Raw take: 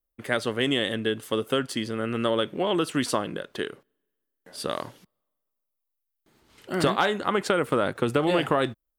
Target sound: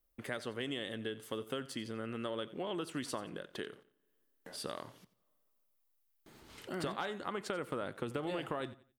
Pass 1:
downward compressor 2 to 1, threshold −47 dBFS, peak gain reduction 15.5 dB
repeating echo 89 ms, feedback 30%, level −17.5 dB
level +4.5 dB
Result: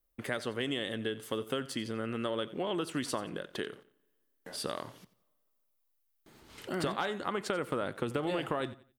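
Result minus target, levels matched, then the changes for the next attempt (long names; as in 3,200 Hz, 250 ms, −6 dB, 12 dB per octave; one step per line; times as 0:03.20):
downward compressor: peak gain reduction −5 dB
change: downward compressor 2 to 1, threshold −57 dBFS, peak gain reduction 20.5 dB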